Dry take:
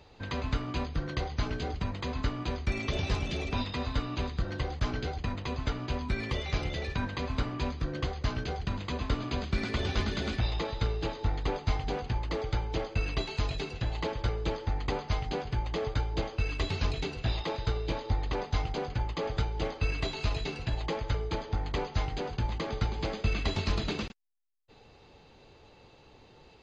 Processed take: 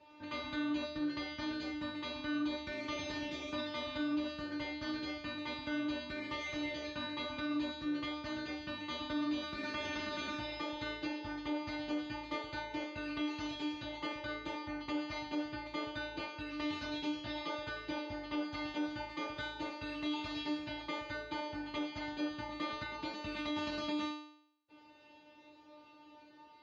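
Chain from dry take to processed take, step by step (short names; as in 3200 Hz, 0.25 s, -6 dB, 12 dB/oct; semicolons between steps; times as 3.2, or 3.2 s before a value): resonator 300 Hz, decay 0.66 s, mix 100%; limiter -45.5 dBFS, peak gain reduction 6.5 dB; HPF 120 Hz 12 dB/oct; air absorption 130 m; gain +18 dB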